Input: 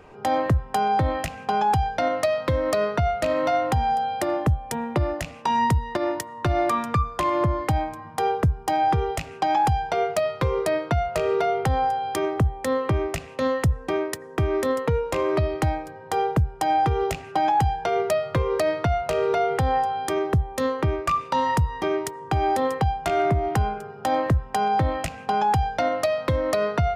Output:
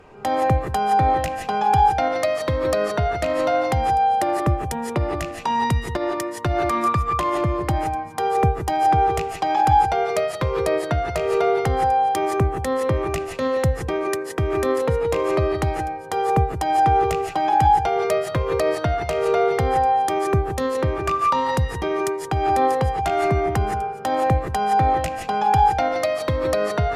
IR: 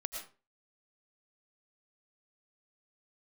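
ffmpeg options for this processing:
-filter_complex "[1:a]atrim=start_sample=2205,afade=type=out:start_time=0.16:duration=0.01,atrim=end_sample=7497,asetrate=27783,aresample=44100[link_01];[0:a][link_01]afir=irnorm=-1:irlink=0"

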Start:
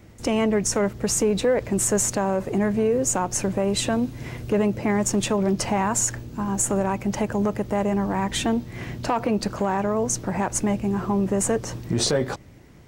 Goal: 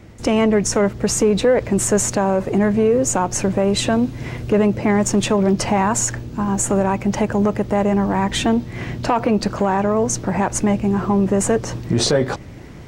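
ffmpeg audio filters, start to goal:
ffmpeg -i in.wav -af "areverse,acompressor=mode=upward:threshold=-35dB:ratio=2.5,areverse,highshelf=frequency=9400:gain=-10.5,acontrast=51" out.wav

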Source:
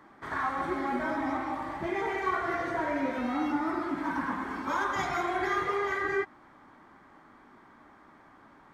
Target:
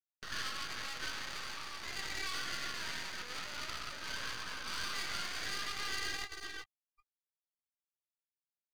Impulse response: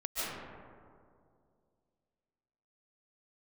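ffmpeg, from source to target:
-filter_complex "[0:a]asplit=2[link_01][link_02];[link_02]adelay=398,lowpass=frequency=2200:poles=1,volume=-10.5dB,asplit=2[link_03][link_04];[link_04]adelay=398,lowpass=frequency=2200:poles=1,volume=0.33,asplit=2[link_05][link_06];[link_06]adelay=398,lowpass=frequency=2200:poles=1,volume=0.33,asplit=2[link_07][link_08];[link_08]adelay=398,lowpass=frequency=2200:poles=1,volume=0.33[link_09];[link_03][link_05][link_07][link_09]amix=inputs=4:normalize=0[link_10];[link_01][link_10]amix=inputs=2:normalize=0,afftfilt=real='re*gte(hypot(re,im),0.0224)':imag='im*gte(hypot(re,im),0.0224)':win_size=1024:overlap=0.75,aresample=16000,aeval=exprs='sgn(val(0))*max(abs(val(0))-0.00501,0)':channel_layout=same,aresample=44100,flanger=delay=15.5:depth=6.1:speed=1.1,aeval=exprs='(tanh(126*val(0)+0.3)-tanh(0.3))/126':channel_layout=same,lowpass=frequency=4700:width_type=q:width=11,anlmdn=0.000398,acompressor=mode=upward:threshold=-45dB:ratio=2.5,aemphasis=mode=reproduction:type=75kf,alimiter=level_in=15dB:limit=-24dB:level=0:latency=1:release=125,volume=-15dB,highpass=frequency=1400:width=0.5412,highpass=frequency=1400:width=1.3066,aeval=exprs='max(val(0),0)':channel_layout=same,volume=15.5dB"

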